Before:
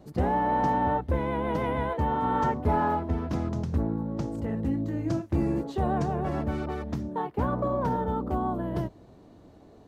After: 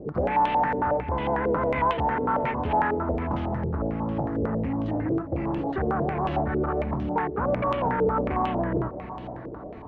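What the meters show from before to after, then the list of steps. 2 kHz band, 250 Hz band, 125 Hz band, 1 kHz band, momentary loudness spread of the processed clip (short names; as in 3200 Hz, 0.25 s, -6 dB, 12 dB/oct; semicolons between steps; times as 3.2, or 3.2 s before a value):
+6.0 dB, +1.0 dB, -0.5 dB, +3.0 dB, 5 LU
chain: compressor, threshold -30 dBFS, peak gain reduction 10 dB; soft clip -32.5 dBFS, distortion -12 dB; diffused feedback echo 0.629 s, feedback 45%, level -13 dB; stepped low-pass 11 Hz 450–3000 Hz; gain +8.5 dB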